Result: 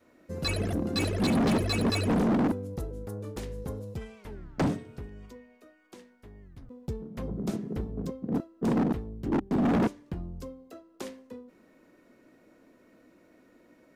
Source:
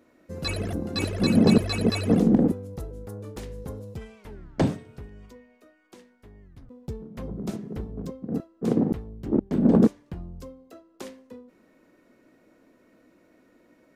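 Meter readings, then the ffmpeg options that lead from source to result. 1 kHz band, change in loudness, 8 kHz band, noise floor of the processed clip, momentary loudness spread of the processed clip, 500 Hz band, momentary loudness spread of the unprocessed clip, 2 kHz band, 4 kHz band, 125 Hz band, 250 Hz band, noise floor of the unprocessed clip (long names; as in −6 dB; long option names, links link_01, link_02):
+2.5 dB, −5.5 dB, can't be measured, −61 dBFS, 19 LU, −4.0 dB, 22 LU, 0.0 dB, −1.5 dB, −3.5 dB, −5.0 dB, −61 dBFS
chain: -af "adynamicequalizer=threshold=0.0251:dfrequency=290:dqfactor=1.7:tfrequency=290:tqfactor=1.7:attack=5:release=100:ratio=0.375:range=2:mode=boostabove:tftype=bell,asoftclip=type=hard:threshold=-22.5dB"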